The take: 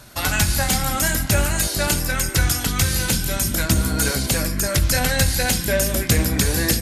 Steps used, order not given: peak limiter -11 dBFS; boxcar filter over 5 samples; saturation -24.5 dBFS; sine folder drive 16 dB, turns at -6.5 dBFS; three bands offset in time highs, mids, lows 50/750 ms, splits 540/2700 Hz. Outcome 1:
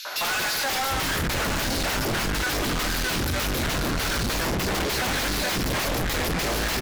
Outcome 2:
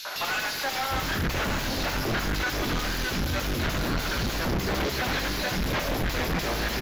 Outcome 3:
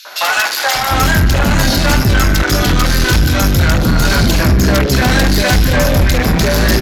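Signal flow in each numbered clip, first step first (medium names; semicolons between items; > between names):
three bands offset in time > sine folder > boxcar filter > saturation > peak limiter; three bands offset in time > peak limiter > sine folder > saturation > boxcar filter; peak limiter > boxcar filter > saturation > three bands offset in time > sine folder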